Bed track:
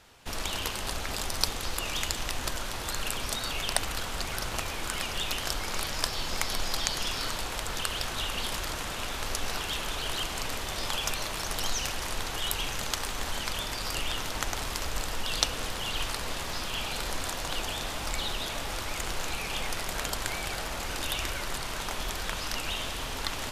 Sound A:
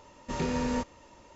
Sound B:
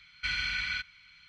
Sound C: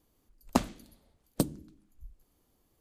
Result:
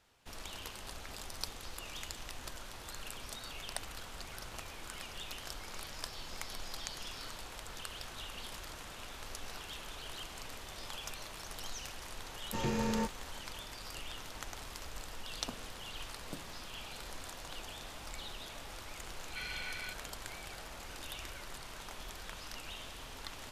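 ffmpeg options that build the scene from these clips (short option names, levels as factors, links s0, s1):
-filter_complex "[0:a]volume=0.224[s0];[1:a]afreqshift=-29[s1];[3:a]alimiter=limit=0.188:level=0:latency=1:release=71[s2];[s1]atrim=end=1.35,asetpts=PTS-STARTPTS,volume=0.668,afade=t=in:d=0.004:c=hsin,afade=t=out:st=1.346:d=0.004:c=hsin,adelay=12240[s3];[s2]atrim=end=2.8,asetpts=PTS-STARTPTS,volume=0.168,afade=t=in:d=0.004:c=hsin,afade=t=out:st=2.796:d=0.004:c=hsin,adelay=14930[s4];[2:a]atrim=end=1.28,asetpts=PTS-STARTPTS,volume=0.282,afade=t=in:d=0.004:c=hsin,afade=t=out:st=1.276:d=0.004:c=hsin,adelay=19120[s5];[s0][s3][s4][s5]amix=inputs=4:normalize=0"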